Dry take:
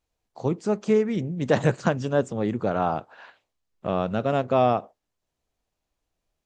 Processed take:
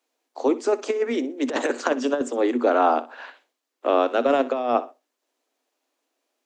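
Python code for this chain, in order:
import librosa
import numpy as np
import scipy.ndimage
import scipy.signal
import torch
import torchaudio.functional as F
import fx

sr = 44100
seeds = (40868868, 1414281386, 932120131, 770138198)

y = scipy.signal.sosfilt(scipy.signal.cheby1(10, 1.0, 240.0, 'highpass', fs=sr, output='sos'), x)
y = fx.over_compress(y, sr, threshold_db=-24.0, ratio=-0.5)
y = fx.echo_feedback(y, sr, ms=62, feedback_pct=24, wet_db=-16.5)
y = y * 10.0 ** (5.5 / 20.0)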